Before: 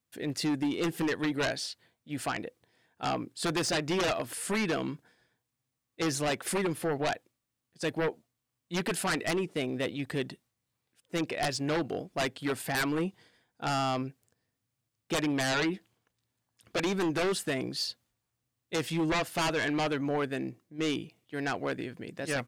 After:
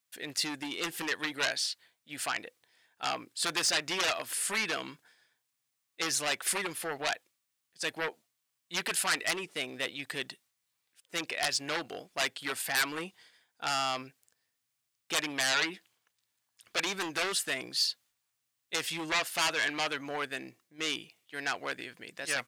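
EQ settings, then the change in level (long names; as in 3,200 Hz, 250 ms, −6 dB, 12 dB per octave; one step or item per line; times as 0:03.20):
tilt shelving filter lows −9 dB, about 690 Hz
low-shelf EQ 170 Hz −3.5 dB
−4.0 dB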